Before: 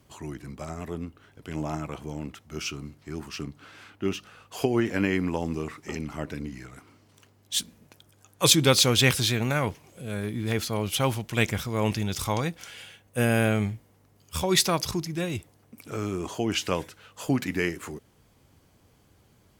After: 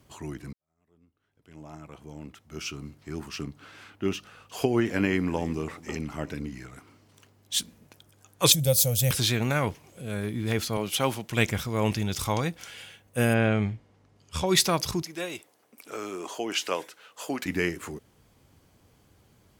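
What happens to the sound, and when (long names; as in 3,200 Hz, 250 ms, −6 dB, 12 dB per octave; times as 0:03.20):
0:00.53–0:02.99: fade in quadratic
0:04.15–0:06.46: single-tap delay 344 ms −20.5 dB
0:08.52–0:09.11: drawn EQ curve 150 Hz 0 dB, 370 Hz −24 dB, 550 Hz +2 dB, 1,100 Hz −23 dB, 1,600 Hz −20 dB, 3,900 Hz −11 dB, 15,000 Hz +13 dB
0:10.77–0:11.29: high-pass filter 170 Hz
0:13.33–0:14.45: low-pass filter 3,200 Hz → 8,200 Hz
0:15.02–0:17.46: high-pass filter 400 Hz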